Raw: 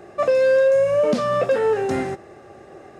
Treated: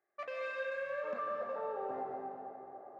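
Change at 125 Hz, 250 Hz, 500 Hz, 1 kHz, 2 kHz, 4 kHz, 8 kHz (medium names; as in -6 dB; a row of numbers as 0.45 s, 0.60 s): under -30 dB, -24.5 dB, -22.0 dB, -12.0 dB, -12.5 dB, under -15 dB, no reading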